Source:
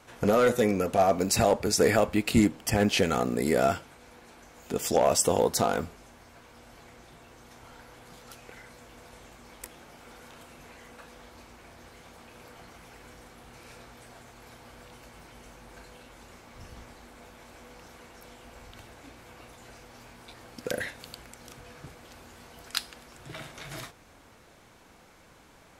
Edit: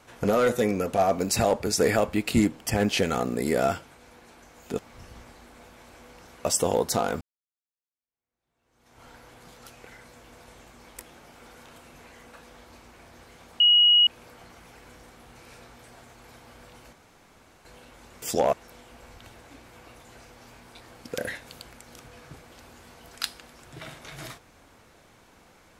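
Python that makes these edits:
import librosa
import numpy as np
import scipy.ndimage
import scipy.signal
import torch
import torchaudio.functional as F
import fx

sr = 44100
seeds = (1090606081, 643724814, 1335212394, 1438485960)

y = fx.edit(x, sr, fx.swap(start_s=4.79, length_s=0.31, other_s=16.4, other_length_s=1.66),
    fx.fade_in_span(start_s=5.86, length_s=1.83, curve='exp'),
    fx.insert_tone(at_s=12.25, length_s=0.47, hz=2900.0, db=-14.0),
    fx.room_tone_fill(start_s=15.11, length_s=0.72), tone=tone)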